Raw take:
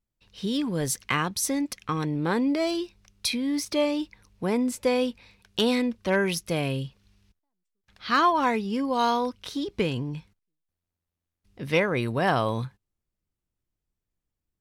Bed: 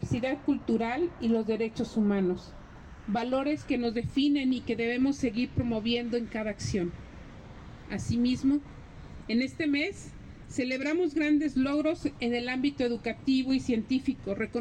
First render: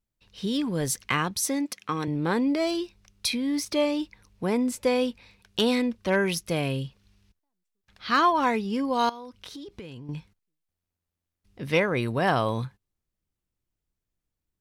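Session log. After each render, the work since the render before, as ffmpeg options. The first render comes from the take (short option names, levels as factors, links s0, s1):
-filter_complex "[0:a]asettb=1/sr,asplit=3[s0][s1][s2];[s0]atrim=end=1.414[s3];[s1]atrim=start=1.41:end=2.08,asetpts=PTS-STARTPTS,afade=t=in:d=0.004:c=qsin,afade=t=out:st=0.666:d=0.004:c=qsin,highpass=180[s4];[s2]atrim=start=2.076[s5];[s3][s4]acrossfade=d=0.004:c1=hsin:c2=qsin[s6];[s6][s5]acrossfade=d=0.004:c1=qsin:c2=hsin,asettb=1/sr,asplit=3[s7][s8][s9];[s7]atrim=end=9.094[s10];[s8]atrim=start=9.09:end=10.09,asetpts=PTS-STARTPTS,afade=t=in:d=0.004:c=qsin,afade=t=out:st=0.996:d=0.004:c=qsin,acompressor=threshold=0.0126:ratio=6:attack=3.2:release=140:knee=1:detection=peak[s11];[s9]atrim=start=10.086[s12];[s10][s11]acrossfade=d=0.004:c1=hsin:c2=qsin[s13];[s13][s12]acrossfade=d=0.004:c1=qsin:c2=hsin"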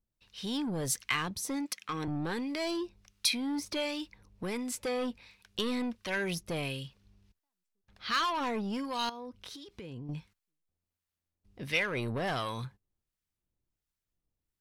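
-filter_complex "[0:a]acrossover=split=960[s0][s1];[s0]aeval=exprs='val(0)*(1-0.7/2+0.7/2*cos(2*PI*1.4*n/s))':c=same[s2];[s1]aeval=exprs='val(0)*(1-0.7/2-0.7/2*cos(2*PI*1.4*n/s))':c=same[s3];[s2][s3]amix=inputs=2:normalize=0,acrossover=split=1900[s4][s5];[s4]asoftclip=type=tanh:threshold=0.0299[s6];[s6][s5]amix=inputs=2:normalize=0"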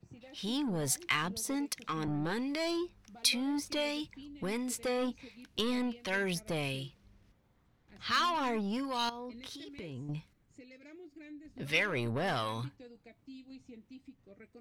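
-filter_complex "[1:a]volume=0.0631[s0];[0:a][s0]amix=inputs=2:normalize=0"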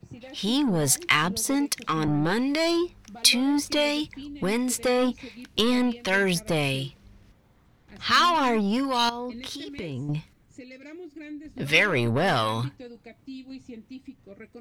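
-af "volume=3.16"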